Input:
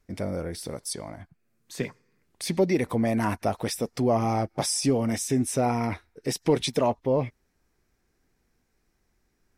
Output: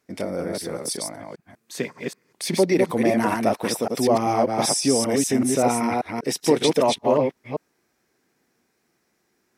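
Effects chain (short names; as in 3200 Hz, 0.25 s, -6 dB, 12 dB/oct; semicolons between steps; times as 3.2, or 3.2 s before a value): reverse delay 0.194 s, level -2.5 dB; HPF 200 Hz 12 dB/oct; gain +4 dB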